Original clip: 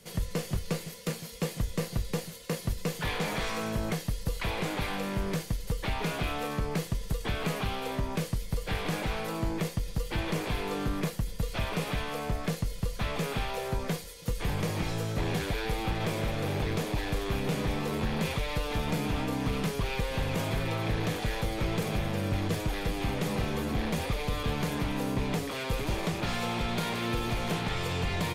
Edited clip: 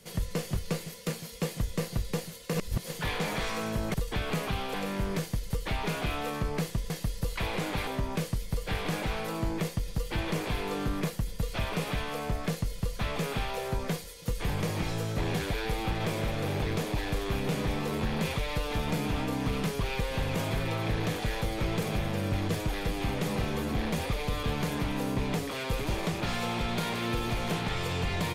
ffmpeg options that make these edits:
-filter_complex "[0:a]asplit=7[s0][s1][s2][s3][s4][s5][s6];[s0]atrim=end=2.542[s7];[s1]atrim=start=2.538:end=2.912,asetpts=PTS-STARTPTS,areverse[s8];[s2]atrim=start=2.908:end=3.942[s9];[s3]atrim=start=7.068:end=7.872[s10];[s4]atrim=start=4.908:end=7.072[s11];[s5]atrim=start=3.938:end=4.912[s12];[s6]atrim=start=7.868[s13];[s7][s8]acrossfade=d=0.004:c1=hsin:c2=hsin[s14];[s14][s9]acrossfade=d=0.004:c1=hsin:c2=hsin[s15];[s15][s10]acrossfade=d=0.004:c1=hsin:c2=hsin[s16];[s16][s11]acrossfade=d=0.004:c1=hsin:c2=hsin[s17];[s17][s12]acrossfade=d=0.004:c1=hsin:c2=hsin[s18];[s18][s13]acrossfade=d=0.004:c1=hsin:c2=hsin"

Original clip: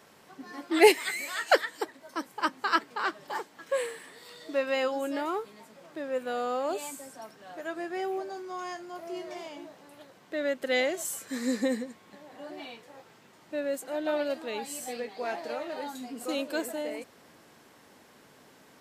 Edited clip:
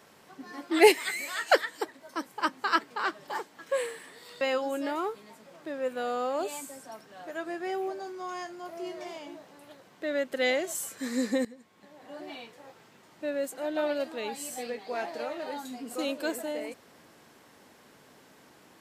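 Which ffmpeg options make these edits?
-filter_complex "[0:a]asplit=3[s0][s1][s2];[s0]atrim=end=4.412[s3];[s1]atrim=start=4.708:end=11.75,asetpts=PTS-STARTPTS,afade=t=out:st=7.038:d=0.004:c=hsin:silence=0.158489[s4];[s2]atrim=start=11.75,asetpts=PTS-STARTPTS,afade=t=in:d=0.75:silence=0.158489[s5];[s4][s5]concat=n=2:v=0:a=1[s6];[s3][s6]acrossfade=d=0.004:c1=hsin:c2=hsin"

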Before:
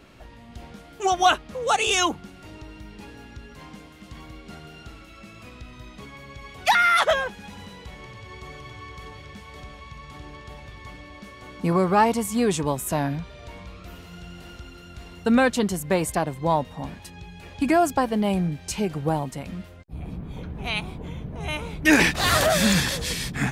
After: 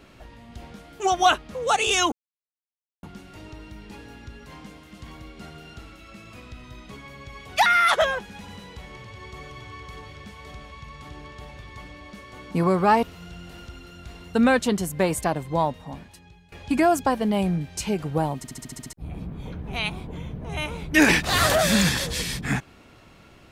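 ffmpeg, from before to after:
-filter_complex "[0:a]asplit=12[s0][s1][s2][s3][s4][s5][s6][s7][s8][s9][s10][s11];[s0]atrim=end=2.12,asetpts=PTS-STARTPTS,afade=t=out:st=2.116:d=0.004:c=hsin,apad=pad_dur=0.91[s12];[s1]atrim=start=2.12:end=12.122,asetpts=PTS-STARTPTS,afade=t=in:d=0.004:c=hsin[s13];[s2]atrim=start=13.938:end=17.43,asetpts=PTS-STARTPTS,afade=t=out:st=2.432:d=1.06:silence=0.16788[s14];[s3]atrim=start=17.43:end=19.352,asetpts=PTS-STARTPTS,afade=t=in:d=0.004:c=hsin:silence=0.16788[s15];[s4]atrim=start=19.278:end=19.352[s16];[s5]atrim=start=19.278:end=19.352[s17];[s6]atrim=start=19.278:end=19.352[s18];[s7]atrim=start=19.278:end=19.352[s19];[s8]atrim=start=19.278:end=19.352[s20];[s9]atrim=start=19.278:end=19.352[s21];[s10]atrim=start=19.278:end=19.352[s22];[s11]atrim=start=19.838[s23];[s12][s13]concat=n=2:v=0:a=1[s24];[s14][s15]concat=n=2:v=0:a=1[s25];[s24][s25]acrossfade=d=0.004:c1=hsin:c2=hsin[s26];[s26][s16]acrossfade=d=0.004:c1=hsin:c2=hsin[s27];[s27][s17]acrossfade=d=0.004:c1=hsin:c2=hsin[s28];[s28][s18]acrossfade=d=0.004:c1=hsin:c2=hsin[s29];[s29][s19]acrossfade=d=0.004:c1=hsin:c2=hsin[s30];[s30][s20]acrossfade=d=0.004:c1=hsin:c2=hsin[s31];[s31][s21]acrossfade=d=0.004:c1=hsin:c2=hsin[s32];[s32][s22]acrossfade=d=0.004:c1=hsin:c2=hsin[s33];[s33][s23]acrossfade=d=0.004:c1=hsin:c2=hsin"

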